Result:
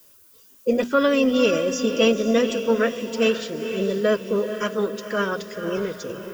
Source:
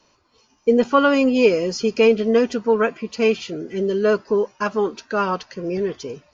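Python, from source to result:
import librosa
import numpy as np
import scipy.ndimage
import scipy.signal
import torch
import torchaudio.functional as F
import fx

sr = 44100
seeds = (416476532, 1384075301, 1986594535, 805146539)

y = fx.peak_eq(x, sr, hz=830.0, db=-14.5, octaves=0.37)
y = fx.hum_notches(y, sr, base_hz=60, count=4)
y = fx.formant_shift(y, sr, semitones=2)
y = fx.dmg_noise_colour(y, sr, seeds[0], colour='violet', level_db=-52.0)
y = fx.echo_diffused(y, sr, ms=487, feedback_pct=45, wet_db=-9)
y = y * librosa.db_to_amplitude(-1.5)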